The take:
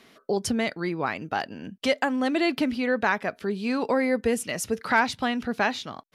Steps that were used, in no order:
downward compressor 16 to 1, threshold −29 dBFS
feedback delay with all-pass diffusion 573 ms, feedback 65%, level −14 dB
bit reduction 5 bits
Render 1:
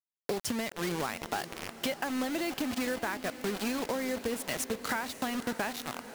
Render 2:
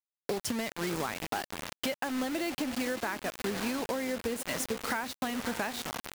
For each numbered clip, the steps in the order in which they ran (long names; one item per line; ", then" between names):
bit reduction, then downward compressor, then feedback delay with all-pass diffusion
feedback delay with all-pass diffusion, then bit reduction, then downward compressor